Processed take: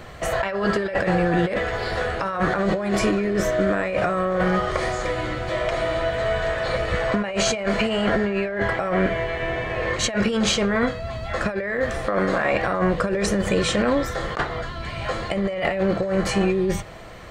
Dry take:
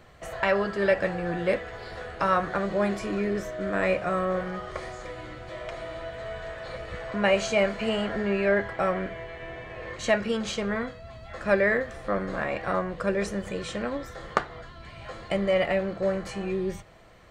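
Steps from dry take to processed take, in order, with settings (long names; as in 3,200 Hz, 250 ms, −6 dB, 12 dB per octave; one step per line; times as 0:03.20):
0:12.06–0:12.52: low-shelf EQ 170 Hz −10 dB
compressor whose output falls as the input rises −31 dBFS, ratio −1
boost into a limiter +18.5 dB
level −9 dB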